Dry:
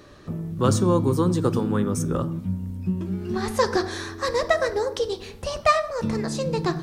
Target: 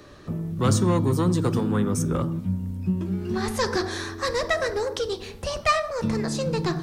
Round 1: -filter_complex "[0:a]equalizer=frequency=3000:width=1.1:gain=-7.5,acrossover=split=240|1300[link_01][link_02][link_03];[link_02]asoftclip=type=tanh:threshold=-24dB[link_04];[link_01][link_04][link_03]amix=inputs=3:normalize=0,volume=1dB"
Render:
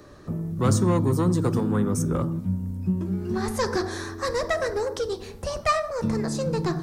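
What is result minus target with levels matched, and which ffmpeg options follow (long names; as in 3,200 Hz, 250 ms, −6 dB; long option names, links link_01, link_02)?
4,000 Hz band −4.0 dB
-filter_complex "[0:a]acrossover=split=240|1300[link_01][link_02][link_03];[link_02]asoftclip=type=tanh:threshold=-24dB[link_04];[link_01][link_04][link_03]amix=inputs=3:normalize=0,volume=1dB"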